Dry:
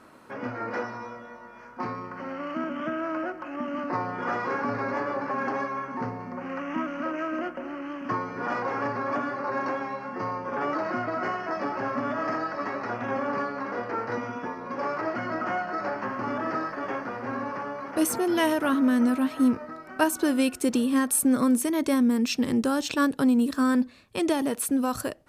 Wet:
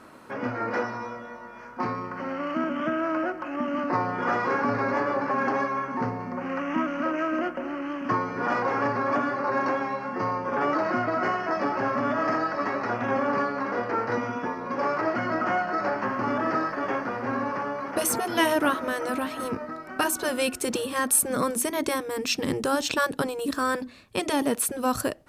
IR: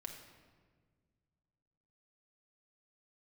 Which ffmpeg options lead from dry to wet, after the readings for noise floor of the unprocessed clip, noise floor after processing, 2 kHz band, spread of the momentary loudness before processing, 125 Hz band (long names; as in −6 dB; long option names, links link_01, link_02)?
−46 dBFS, −42 dBFS, +3.5 dB, 11 LU, +3.0 dB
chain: -af "afftfilt=real='re*lt(hypot(re,im),0.562)':imag='im*lt(hypot(re,im),0.562)':win_size=1024:overlap=0.75,volume=3.5dB"